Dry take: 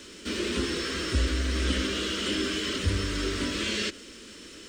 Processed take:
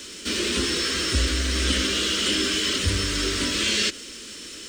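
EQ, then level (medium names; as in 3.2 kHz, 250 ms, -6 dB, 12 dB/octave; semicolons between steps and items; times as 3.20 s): treble shelf 2.6 kHz +9.5 dB; +2.0 dB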